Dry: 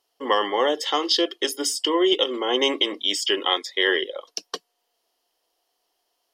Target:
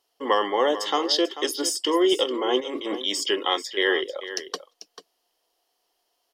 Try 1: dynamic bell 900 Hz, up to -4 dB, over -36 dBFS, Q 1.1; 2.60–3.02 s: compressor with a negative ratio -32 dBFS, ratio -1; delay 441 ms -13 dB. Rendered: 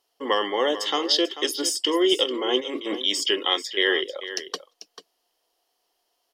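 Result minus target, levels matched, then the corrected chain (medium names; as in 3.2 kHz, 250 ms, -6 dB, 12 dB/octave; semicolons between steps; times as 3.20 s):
1 kHz band -3.5 dB
dynamic bell 2.9 kHz, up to -4 dB, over -36 dBFS, Q 1.1; 2.60–3.02 s: compressor with a negative ratio -32 dBFS, ratio -1; delay 441 ms -13 dB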